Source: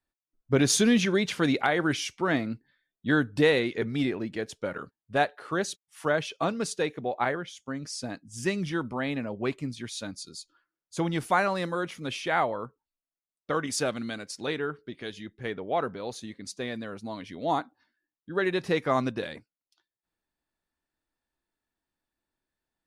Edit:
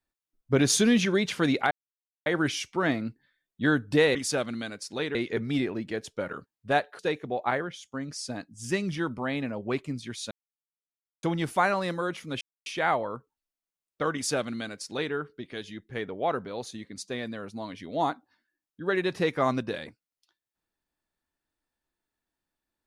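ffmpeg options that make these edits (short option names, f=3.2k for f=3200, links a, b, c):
-filter_complex "[0:a]asplit=8[a][b][c][d][e][f][g][h];[a]atrim=end=1.71,asetpts=PTS-STARTPTS,afade=t=out:st=1.706:d=0.004:c=hsin,apad=pad_dur=0.55[i];[b]atrim=start=1.71:end=3.602,asetpts=PTS-STARTPTS,afade=t=in:d=0.004:c=hsin[j];[c]atrim=start=13.628:end=14.632[k];[d]atrim=start=3.598:end=5.442[l];[e]atrim=start=6.728:end=10.05,asetpts=PTS-STARTPTS,afade=t=out:st=3.318:d=0.004:c=hsin[m];[f]atrim=start=10.05:end=10.97,asetpts=PTS-STARTPTS,volume=0[n];[g]atrim=start=10.97:end=12.15,asetpts=PTS-STARTPTS,afade=t=in:d=0.004:c=hsin,afade=t=out:st=1.176:d=0.004:c=hsin,apad=pad_dur=0.25[o];[h]atrim=start=12.15,asetpts=PTS-STARTPTS,afade=t=in:d=0.004:c=hsin[p];[i][j]concat=n=2:v=0:a=1[q];[q][k]acrossfade=d=0.004:c1=hsin:c2=hsin[r];[r][l]acrossfade=d=0.004:c1=hsin:c2=hsin[s];[m][n][o][p]concat=n=4:v=0:a=1[t];[s][t]acrossfade=d=0.004:c1=hsin:c2=hsin"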